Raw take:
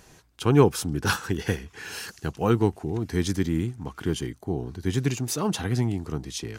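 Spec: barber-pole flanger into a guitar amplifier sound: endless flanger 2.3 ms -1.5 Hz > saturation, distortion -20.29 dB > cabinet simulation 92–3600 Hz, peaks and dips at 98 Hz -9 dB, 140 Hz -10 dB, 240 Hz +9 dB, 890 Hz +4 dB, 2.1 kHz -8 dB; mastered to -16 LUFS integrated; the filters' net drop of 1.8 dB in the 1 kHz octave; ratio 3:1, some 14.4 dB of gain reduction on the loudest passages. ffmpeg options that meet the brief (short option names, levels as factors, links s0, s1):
-filter_complex "[0:a]equalizer=f=1000:t=o:g=-4.5,acompressor=threshold=0.0251:ratio=3,asplit=2[s0][s1];[s1]adelay=2.3,afreqshift=-1.5[s2];[s0][s2]amix=inputs=2:normalize=1,asoftclip=threshold=0.0422,highpass=92,equalizer=f=98:t=q:w=4:g=-9,equalizer=f=140:t=q:w=4:g=-10,equalizer=f=240:t=q:w=4:g=9,equalizer=f=890:t=q:w=4:g=4,equalizer=f=2100:t=q:w=4:g=-8,lowpass=f=3600:w=0.5412,lowpass=f=3600:w=1.3066,volume=14.1"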